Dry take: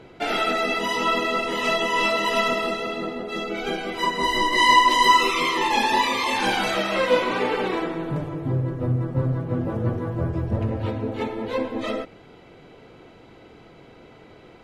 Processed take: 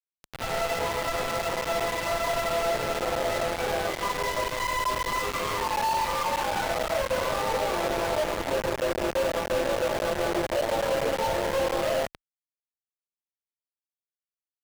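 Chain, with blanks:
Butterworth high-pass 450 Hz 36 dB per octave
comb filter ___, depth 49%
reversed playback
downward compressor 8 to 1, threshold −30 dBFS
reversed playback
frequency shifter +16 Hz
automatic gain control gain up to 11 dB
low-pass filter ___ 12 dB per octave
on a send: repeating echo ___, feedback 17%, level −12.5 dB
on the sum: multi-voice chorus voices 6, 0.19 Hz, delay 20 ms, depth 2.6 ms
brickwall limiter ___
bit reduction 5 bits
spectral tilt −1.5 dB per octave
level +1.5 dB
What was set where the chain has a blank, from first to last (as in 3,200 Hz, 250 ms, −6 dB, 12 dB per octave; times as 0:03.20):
3.5 ms, 1,300 Hz, 162 ms, −22.5 dBFS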